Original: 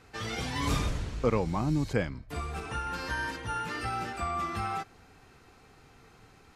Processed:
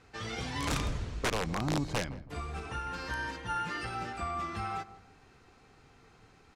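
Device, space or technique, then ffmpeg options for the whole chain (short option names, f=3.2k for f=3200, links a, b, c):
overflowing digital effects unit: -filter_complex "[0:a]asettb=1/sr,asplit=3[a][b][c];[a]atrim=end=3.444[d];[b]atrim=start=3.44:end=3.95,asetpts=PTS-STARTPTS,afade=t=in:d=0.004:c=qsin,afade=t=out:st=0.506:d=0.004:c=qsin,aecho=1:1:5.7:0.52,atrim=end_sample=22491[e];[c]atrim=start=3.946[f];[d][e]acrossfade=d=0.004:c1=hsin:c2=qsin[g];[g][f]acrossfade=d=0.004:c1=qsin:c2=hsin,aeval=exprs='(mod(10.6*val(0)+1,2)-1)/10.6':c=same,lowpass=8.6k,asplit=2[h][i];[i]adelay=163,lowpass=f=850:p=1,volume=-13.5dB,asplit=2[j][k];[k]adelay=163,lowpass=f=850:p=1,volume=0.35,asplit=2[l][m];[m]adelay=163,lowpass=f=850:p=1,volume=0.35[n];[h][j][l][n]amix=inputs=4:normalize=0,volume=-3dB"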